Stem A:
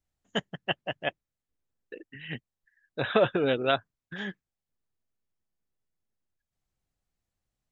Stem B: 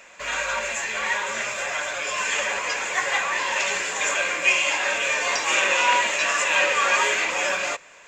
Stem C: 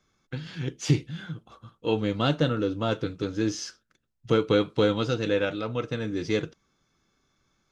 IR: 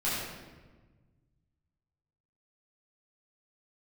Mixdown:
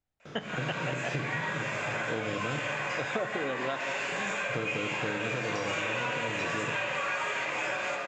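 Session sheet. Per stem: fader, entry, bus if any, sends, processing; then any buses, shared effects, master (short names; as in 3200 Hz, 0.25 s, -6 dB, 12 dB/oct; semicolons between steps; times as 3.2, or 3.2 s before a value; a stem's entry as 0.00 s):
0.0 dB, 0.00 s, send -18 dB, dry
-12.0 dB, 0.20 s, send -5 dB, AGC gain up to 8 dB; auto duck -14 dB, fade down 0.40 s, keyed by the first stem
-8.0 dB, 0.25 s, muted 2.6–4.14, send -15.5 dB, per-bin compression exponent 0.4; gate with hold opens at -31 dBFS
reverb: on, RT60 1.3 s, pre-delay 8 ms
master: LPF 2600 Hz 6 dB/oct; low shelf 68 Hz -10 dB; compressor, threshold -29 dBFS, peak gain reduction 12.5 dB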